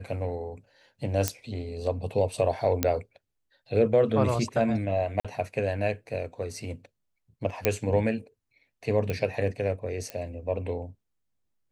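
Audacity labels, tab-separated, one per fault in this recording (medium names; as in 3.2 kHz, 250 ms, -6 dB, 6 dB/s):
1.280000	1.280000	pop -7 dBFS
2.830000	2.830000	pop -7 dBFS
5.200000	5.250000	dropout 46 ms
7.650000	7.650000	pop -8 dBFS
9.100000	9.100000	pop -17 dBFS
10.100000	10.100000	pop -19 dBFS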